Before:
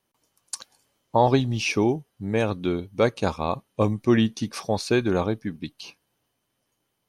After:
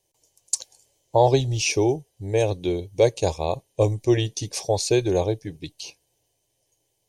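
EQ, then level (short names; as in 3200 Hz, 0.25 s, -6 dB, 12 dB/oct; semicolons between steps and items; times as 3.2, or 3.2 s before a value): low shelf 460 Hz +4.5 dB; bell 7100 Hz +10.5 dB 0.73 oct; fixed phaser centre 540 Hz, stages 4; +2.0 dB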